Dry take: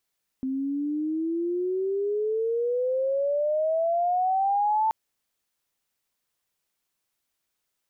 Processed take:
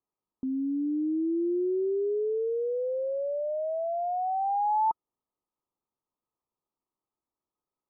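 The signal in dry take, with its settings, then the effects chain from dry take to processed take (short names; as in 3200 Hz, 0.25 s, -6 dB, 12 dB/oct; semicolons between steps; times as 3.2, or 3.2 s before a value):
chirp logarithmic 260 Hz -> 890 Hz -25.5 dBFS -> -20 dBFS 4.48 s
rippled Chebyshev low-pass 1300 Hz, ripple 6 dB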